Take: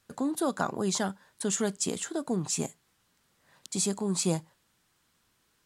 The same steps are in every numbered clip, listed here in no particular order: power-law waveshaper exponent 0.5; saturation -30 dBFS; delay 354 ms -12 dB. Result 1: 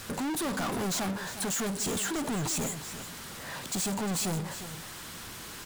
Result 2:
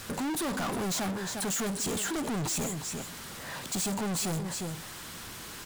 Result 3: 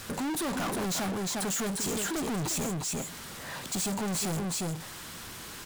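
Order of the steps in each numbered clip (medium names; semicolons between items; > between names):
power-law waveshaper > saturation > delay; power-law waveshaper > delay > saturation; delay > power-law waveshaper > saturation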